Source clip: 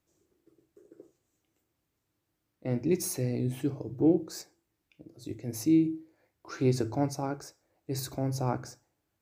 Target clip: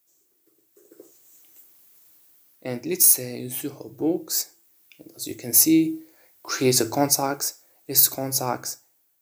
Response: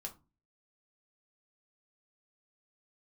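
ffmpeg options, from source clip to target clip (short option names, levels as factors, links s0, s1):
-af "aemphasis=mode=production:type=riaa,dynaudnorm=f=710:g=3:m=5.62,volume=0.891"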